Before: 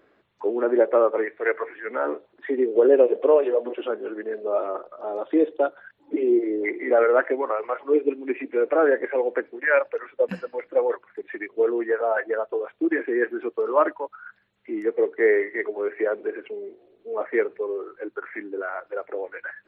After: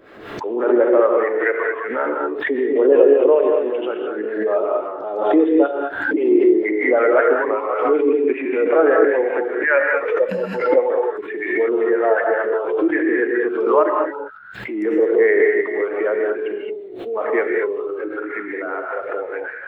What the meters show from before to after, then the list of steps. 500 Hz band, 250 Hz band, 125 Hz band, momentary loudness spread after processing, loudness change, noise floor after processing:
+5.5 dB, +7.0 dB, no reading, 12 LU, +5.5 dB, -32 dBFS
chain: level rider gain up to 5.5 dB; harmonic tremolo 5.2 Hz, depth 50%, crossover 670 Hz; gated-style reverb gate 240 ms rising, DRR 0.5 dB; swell ahead of each attack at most 58 dB/s

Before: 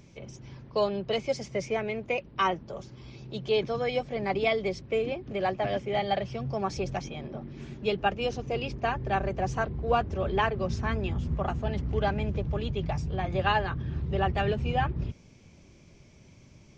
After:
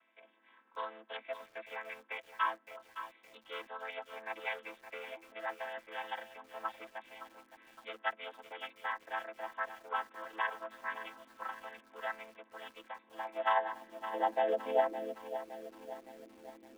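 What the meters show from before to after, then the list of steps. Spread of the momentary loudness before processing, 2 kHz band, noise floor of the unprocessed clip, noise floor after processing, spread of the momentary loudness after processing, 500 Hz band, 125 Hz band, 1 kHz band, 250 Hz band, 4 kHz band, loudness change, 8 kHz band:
11 LU, -6.0 dB, -55 dBFS, -67 dBFS, 18 LU, -10.5 dB, under -40 dB, -6.5 dB, -19.5 dB, -11.5 dB, -9.5 dB, no reading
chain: vocoder on a held chord minor triad, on A3; in parallel at -8.5 dB: saturation -27.5 dBFS, distortion -10 dB; on the sum: high-pass sweep 1.3 kHz -> 350 Hz, 12.81–15.83 s; resampled via 8 kHz; bit-crushed delay 564 ms, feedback 55%, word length 8-bit, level -11 dB; trim -6 dB

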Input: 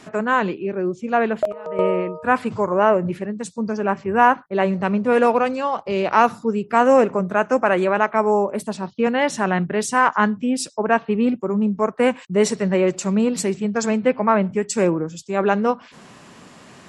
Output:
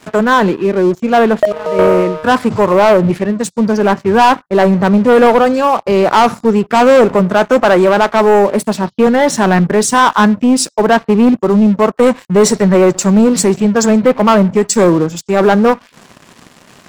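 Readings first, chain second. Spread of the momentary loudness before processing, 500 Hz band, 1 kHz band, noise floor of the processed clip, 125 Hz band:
8 LU, +9.5 dB, +7.5 dB, -46 dBFS, +11.0 dB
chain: dynamic bell 2.7 kHz, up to -7 dB, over -41 dBFS, Q 2; waveshaping leveller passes 3; trim +1 dB

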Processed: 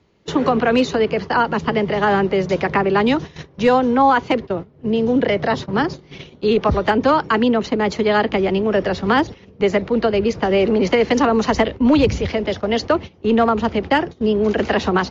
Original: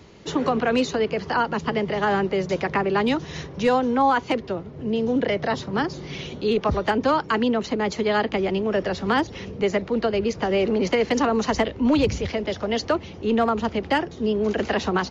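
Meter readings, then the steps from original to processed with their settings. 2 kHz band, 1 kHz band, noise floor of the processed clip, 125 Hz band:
+5.0 dB, +5.0 dB, -48 dBFS, +5.0 dB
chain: gate -31 dBFS, range -17 dB; distance through air 66 m; trim +5.5 dB

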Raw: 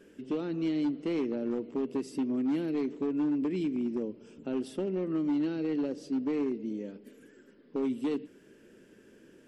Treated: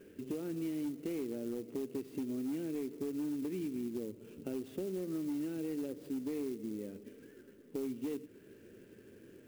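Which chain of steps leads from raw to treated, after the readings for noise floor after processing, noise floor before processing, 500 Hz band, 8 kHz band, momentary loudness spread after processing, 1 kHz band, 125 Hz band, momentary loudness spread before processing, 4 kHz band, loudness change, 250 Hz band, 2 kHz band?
-58 dBFS, -59 dBFS, -6.0 dB, no reading, 19 LU, -12.0 dB, -5.5 dB, 8 LU, -7.0 dB, -7.5 dB, -7.5 dB, -8.5 dB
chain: fifteen-band graphic EQ 100 Hz +12 dB, 400 Hz +4 dB, 1 kHz -5 dB, 2.5 kHz +3 dB, 6.3 kHz -12 dB; compression 2.5:1, threshold -37 dBFS, peak gain reduction 8.5 dB; sampling jitter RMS 0.043 ms; trim -2 dB

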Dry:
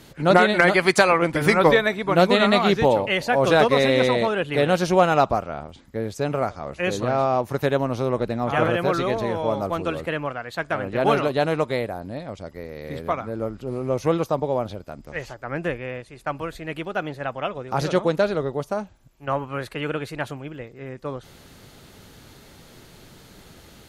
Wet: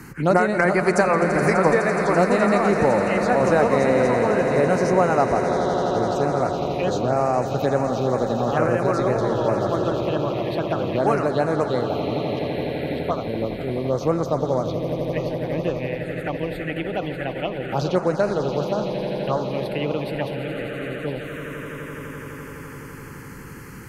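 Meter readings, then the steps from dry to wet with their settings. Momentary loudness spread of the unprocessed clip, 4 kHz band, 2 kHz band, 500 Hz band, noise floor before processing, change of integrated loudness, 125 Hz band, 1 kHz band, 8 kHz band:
17 LU, -6.5 dB, -2.5 dB, +1.5 dB, -49 dBFS, 0.0 dB, +2.5 dB, +0.5 dB, no reading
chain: short-mantissa float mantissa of 8-bit; echo with a slow build-up 84 ms, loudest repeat 8, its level -14 dB; touch-sensitive phaser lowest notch 580 Hz, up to 3.4 kHz, full sweep at -16 dBFS; three bands compressed up and down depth 40%

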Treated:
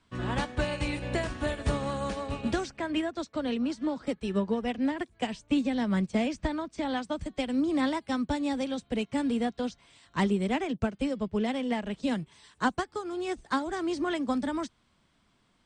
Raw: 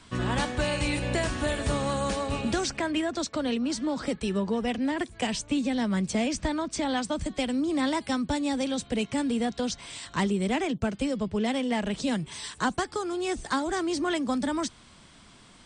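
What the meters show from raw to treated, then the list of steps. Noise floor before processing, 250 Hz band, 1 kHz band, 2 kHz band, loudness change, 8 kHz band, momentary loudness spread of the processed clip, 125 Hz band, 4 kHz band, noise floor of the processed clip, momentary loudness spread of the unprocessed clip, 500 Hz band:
-53 dBFS, -1.5 dB, -2.0 dB, -3.0 dB, -2.0 dB, -11.5 dB, 6 LU, -2.5 dB, -5.5 dB, -69 dBFS, 3 LU, -2.0 dB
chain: treble shelf 5.4 kHz -9.5 dB; in parallel at -2 dB: peak limiter -27.5 dBFS, peak gain reduction 11 dB; on the sum: upward expansion 2.5:1, over -34 dBFS

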